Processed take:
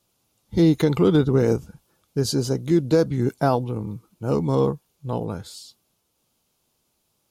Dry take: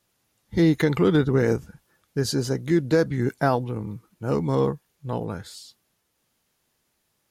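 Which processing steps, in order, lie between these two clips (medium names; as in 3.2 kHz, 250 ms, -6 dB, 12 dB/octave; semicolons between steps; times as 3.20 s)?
peaking EQ 1.8 kHz -11.5 dB 0.54 oct; trim +2 dB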